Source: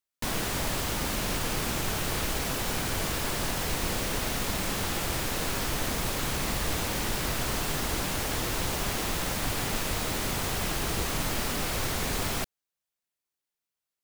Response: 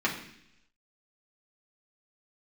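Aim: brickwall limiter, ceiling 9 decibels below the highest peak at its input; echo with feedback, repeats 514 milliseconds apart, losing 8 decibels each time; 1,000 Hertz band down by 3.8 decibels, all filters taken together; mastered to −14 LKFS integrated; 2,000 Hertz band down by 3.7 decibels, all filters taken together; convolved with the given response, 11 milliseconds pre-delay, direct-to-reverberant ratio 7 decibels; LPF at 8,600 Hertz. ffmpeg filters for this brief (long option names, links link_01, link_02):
-filter_complex "[0:a]lowpass=8600,equalizer=frequency=1000:width_type=o:gain=-4,equalizer=frequency=2000:width_type=o:gain=-3.5,alimiter=level_in=2dB:limit=-24dB:level=0:latency=1,volume=-2dB,aecho=1:1:514|1028|1542|2056|2570:0.398|0.159|0.0637|0.0255|0.0102,asplit=2[link_01][link_02];[1:a]atrim=start_sample=2205,adelay=11[link_03];[link_02][link_03]afir=irnorm=-1:irlink=0,volume=-18dB[link_04];[link_01][link_04]amix=inputs=2:normalize=0,volume=20.5dB"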